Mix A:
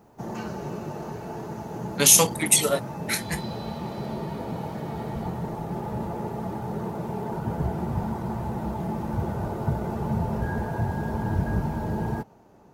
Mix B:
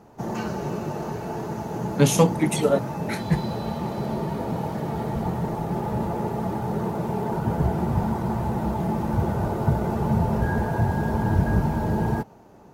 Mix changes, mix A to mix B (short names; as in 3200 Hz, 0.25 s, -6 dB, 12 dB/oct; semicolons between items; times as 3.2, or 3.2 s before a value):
speech: add tilt -4.5 dB/oct; first sound +4.5 dB